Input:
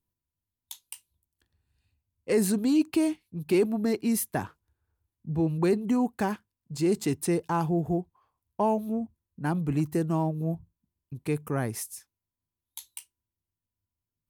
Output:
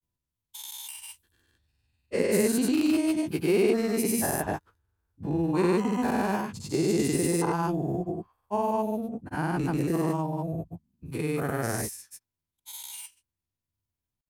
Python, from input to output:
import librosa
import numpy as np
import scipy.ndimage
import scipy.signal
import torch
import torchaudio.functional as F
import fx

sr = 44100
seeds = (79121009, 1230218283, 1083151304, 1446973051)

y = fx.spec_dilate(x, sr, span_ms=240)
y = fx.granulator(y, sr, seeds[0], grain_ms=100.0, per_s=20.0, spray_ms=100.0, spread_st=0)
y = y * librosa.db_to_amplitude(-3.5)